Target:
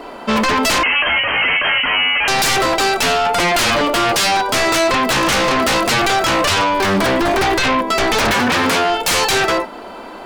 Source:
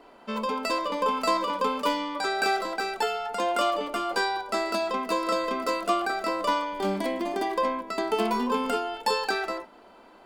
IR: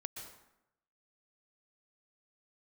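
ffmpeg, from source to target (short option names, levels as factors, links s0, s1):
-filter_complex "[0:a]aeval=exprs='0.251*sin(PI/2*6.31*val(0)/0.251)':c=same,asettb=1/sr,asplit=3[s0][s1][s2];[s0]atrim=end=0.834[s3];[s1]atrim=start=0.83:end=2.28,asetpts=PTS-STARTPTS,afade=t=in:d=0.004:c=qsin,afade=t=out:st=1.446:d=0.004:c=qsin,lowpass=f=2700:t=q:w=0.5098,lowpass=f=2700:t=q:w=0.6013,lowpass=f=2700:t=q:w=0.9,lowpass=f=2700:t=q:w=2.563,afreqshift=-3200[s4];[s2]atrim=start=2.276[s5];[s3][s4]acrossfade=d=0.004:c1=hsin:c2=qsin[s6];[s6][s5]acrossfade=d=0.004:c1=qsin:c2=hsin,asettb=1/sr,asplit=3[s7][s8][s9];[s7]atrim=end=8.344[s10];[s8]atrim=start=8.34:end=8.9,asetpts=PTS-STARTPTS,afade=t=in:d=0.004:c=qsin,afade=t=out:st=0.556:d=0.004:c=qsin,highpass=86[s11];[s9]atrim=start=8.896[s12];[s10][s11]acrossfade=d=0.004:c1=hsin:c2=qsin[s13];[s13][s12]acrossfade=d=0.004:c1=qsin:c2=hsin"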